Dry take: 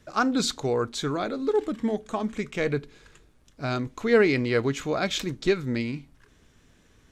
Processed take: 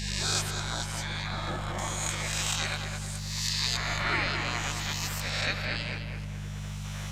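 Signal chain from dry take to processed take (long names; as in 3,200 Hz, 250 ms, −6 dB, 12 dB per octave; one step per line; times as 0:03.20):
peak hold with a rise ahead of every peak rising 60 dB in 1.38 s
camcorder AGC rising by 14 dB per second
gate on every frequency bin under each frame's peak −20 dB weak
0:01.78–0:03.77: bass and treble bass −5 dB, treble +13 dB
hum with harmonics 50 Hz, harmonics 4, −35 dBFS −3 dB per octave
on a send: feedback echo with a low-pass in the loop 212 ms, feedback 52%, low-pass 2,200 Hz, level −4 dB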